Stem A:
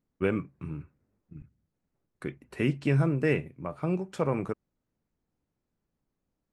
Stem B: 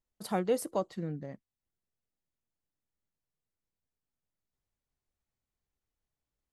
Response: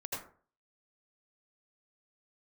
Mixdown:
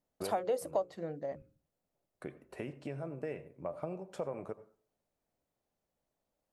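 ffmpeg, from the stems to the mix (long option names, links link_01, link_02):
-filter_complex "[0:a]acompressor=threshold=-32dB:ratio=6,highshelf=frequency=6600:gain=4.5,volume=-10.5dB,asplit=2[link_01][link_02];[link_02]volume=-15dB[link_03];[1:a]lowshelf=frequency=320:gain=-11.5,bandreject=frequency=60:width_type=h:width=6,bandreject=frequency=120:width_type=h:width=6,bandreject=frequency=180:width_type=h:width=6,bandreject=frequency=240:width_type=h:width=6,bandreject=frequency=300:width_type=h:width=6,bandreject=frequency=360:width_type=h:width=6,bandreject=frequency=420:width_type=h:width=6,bandreject=frequency=480:width_type=h:width=6,bandreject=frequency=540:width_type=h:width=6,volume=-0.5dB,asplit=2[link_04][link_05];[link_05]apad=whole_len=287757[link_06];[link_01][link_06]sidechaincompress=threshold=-37dB:ratio=8:attack=46:release=1210[link_07];[2:a]atrim=start_sample=2205[link_08];[link_03][link_08]afir=irnorm=-1:irlink=0[link_09];[link_07][link_04][link_09]amix=inputs=3:normalize=0,equalizer=frequency=620:width=1.3:gain=13.5,acompressor=threshold=-31dB:ratio=3"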